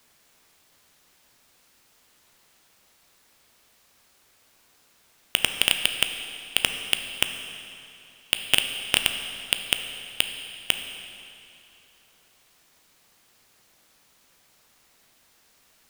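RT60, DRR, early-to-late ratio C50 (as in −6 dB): 2.7 s, 6.0 dB, 7.0 dB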